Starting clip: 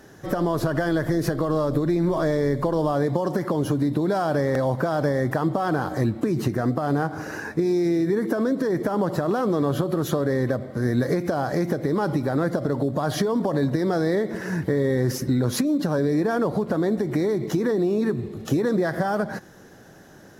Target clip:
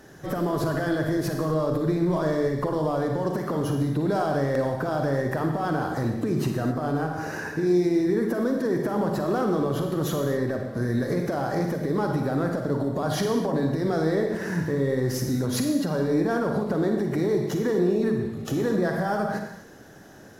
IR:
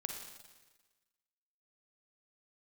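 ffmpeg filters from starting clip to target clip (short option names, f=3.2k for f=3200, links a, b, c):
-filter_complex "[0:a]acontrast=65,alimiter=limit=-10dB:level=0:latency=1:release=147[a];[1:a]atrim=start_sample=2205,afade=t=out:st=0.32:d=0.01,atrim=end_sample=14553[b];[a][b]afir=irnorm=-1:irlink=0,volume=-5.5dB"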